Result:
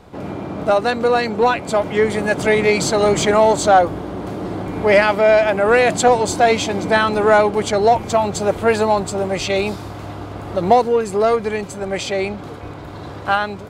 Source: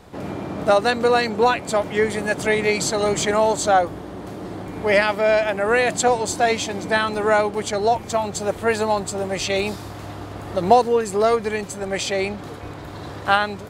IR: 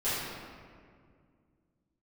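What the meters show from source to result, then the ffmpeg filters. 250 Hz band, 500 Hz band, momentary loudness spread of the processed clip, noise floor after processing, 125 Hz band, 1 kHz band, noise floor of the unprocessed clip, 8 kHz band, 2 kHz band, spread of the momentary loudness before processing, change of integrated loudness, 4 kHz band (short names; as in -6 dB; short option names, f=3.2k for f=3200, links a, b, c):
+4.5 dB, +4.5 dB, 15 LU, -33 dBFS, +4.5 dB, +3.5 dB, -35 dBFS, +0.5 dB, +2.5 dB, 16 LU, +3.5 dB, +1.5 dB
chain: -filter_complex "[0:a]highshelf=f=4.3k:g=-7,bandreject=f=1.8k:w=15,dynaudnorm=f=200:g=17:m=11.5dB,asplit=2[a][b];[b]asoftclip=type=tanh:threshold=-15dB,volume=-6dB[c];[a][c]amix=inputs=2:normalize=0,volume=-1.5dB"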